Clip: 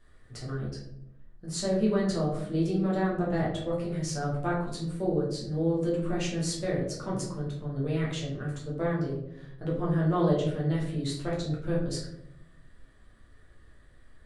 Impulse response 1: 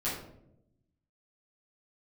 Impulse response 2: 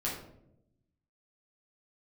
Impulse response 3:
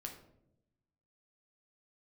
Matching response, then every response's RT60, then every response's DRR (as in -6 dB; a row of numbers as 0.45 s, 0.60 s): 2; 0.80 s, 0.80 s, 0.80 s; -10.5 dB, -6.0 dB, 2.0 dB